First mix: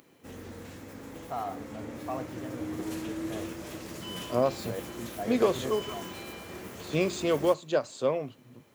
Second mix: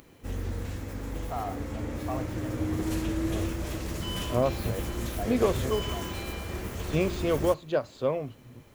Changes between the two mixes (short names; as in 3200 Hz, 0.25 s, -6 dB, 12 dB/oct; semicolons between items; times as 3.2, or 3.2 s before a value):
second voice: add air absorption 140 m; background +4.0 dB; master: remove HPF 160 Hz 12 dB/oct